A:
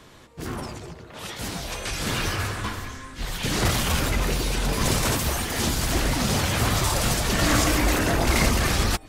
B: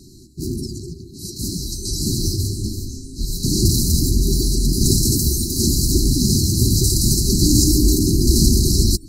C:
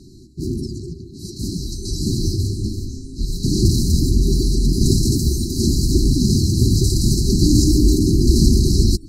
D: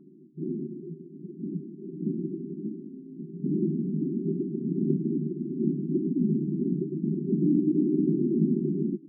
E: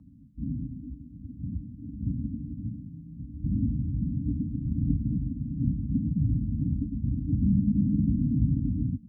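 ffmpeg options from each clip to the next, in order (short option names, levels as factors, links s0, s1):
-af "afftfilt=real='re*(1-between(b*sr/4096,400,3900))':imag='im*(1-between(b*sr/4096,400,3900))':win_size=4096:overlap=0.75,volume=2.51"
-af "aemphasis=mode=reproduction:type=50kf,volume=1.19"
-af "afftfilt=real='re*between(b*sr/4096,150,1400)':imag='im*between(b*sr/4096,150,1400)':win_size=4096:overlap=0.75,volume=0.501"
-af "afreqshift=-100"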